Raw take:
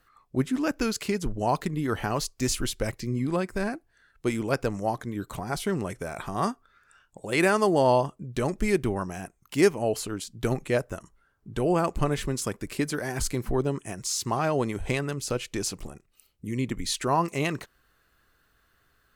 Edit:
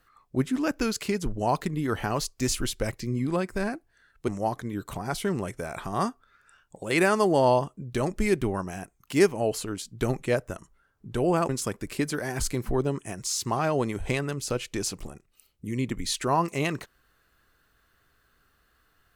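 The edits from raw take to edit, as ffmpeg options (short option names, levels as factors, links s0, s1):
-filter_complex "[0:a]asplit=3[s0][s1][s2];[s0]atrim=end=4.282[s3];[s1]atrim=start=4.698:end=11.912[s4];[s2]atrim=start=12.288[s5];[s3][s4]acrossfade=d=0.004:c1=hsin:c2=hsin[s6];[s6][s5]acrossfade=d=0.004:c1=hsin:c2=hsin"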